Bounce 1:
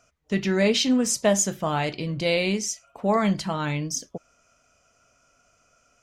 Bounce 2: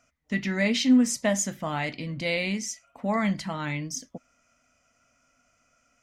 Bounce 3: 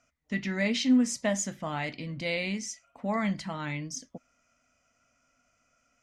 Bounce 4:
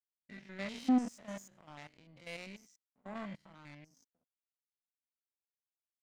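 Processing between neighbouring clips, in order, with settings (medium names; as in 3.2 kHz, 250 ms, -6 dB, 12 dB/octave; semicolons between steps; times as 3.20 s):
graphic EQ with 31 bands 250 Hz +9 dB, 400 Hz -9 dB, 2 kHz +9 dB; trim -5 dB
low-pass 9.4 kHz 12 dB/octave; trim -3.5 dB
spectrogram pixelated in time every 100 ms; power-law waveshaper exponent 2; trim -3.5 dB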